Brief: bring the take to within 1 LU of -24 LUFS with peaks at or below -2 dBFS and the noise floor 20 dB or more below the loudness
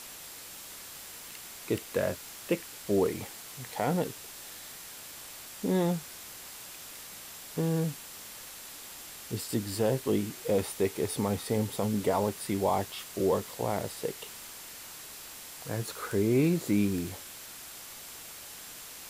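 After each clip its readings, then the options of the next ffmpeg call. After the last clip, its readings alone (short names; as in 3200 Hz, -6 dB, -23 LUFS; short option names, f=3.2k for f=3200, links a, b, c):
steady tone 7500 Hz; tone level -57 dBFS; noise floor -46 dBFS; noise floor target -53 dBFS; loudness -33.0 LUFS; peak -16.0 dBFS; loudness target -24.0 LUFS
-> -af "bandreject=f=7.5k:w=30"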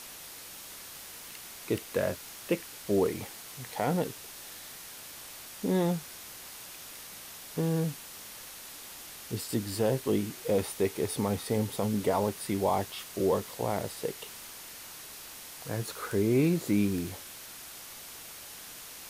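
steady tone none; noise floor -46 dBFS; noise floor target -53 dBFS
-> -af "afftdn=nr=7:nf=-46"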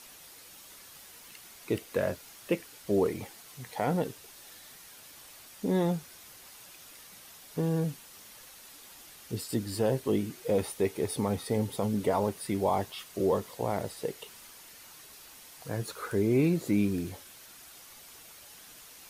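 noise floor -52 dBFS; loudness -31.0 LUFS; peak -16.0 dBFS; loudness target -24.0 LUFS
-> -af "volume=7dB"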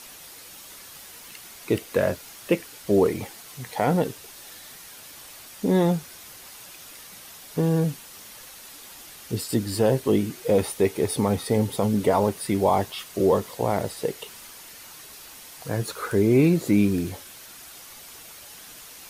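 loudness -24.0 LUFS; peak -9.0 dBFS; noise floor -45 dBFS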